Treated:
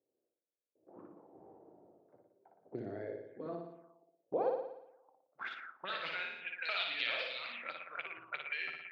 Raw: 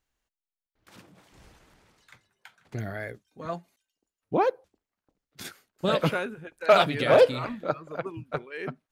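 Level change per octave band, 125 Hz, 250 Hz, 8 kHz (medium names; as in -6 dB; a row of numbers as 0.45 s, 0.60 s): -22.0 dB, -16.0 dB, under -25 dB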